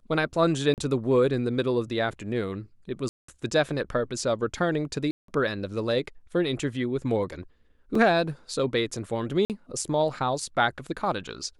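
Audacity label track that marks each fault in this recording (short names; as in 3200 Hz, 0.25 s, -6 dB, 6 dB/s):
0.740000	0.780000	gap 38 ms
3.090000	3.280000	gap 0.194 s
5.110000	5.280000	gap 0.173 s
7.950000	7.950000	gap 3.6 ms
9.450000	9.500000	gap 48 ms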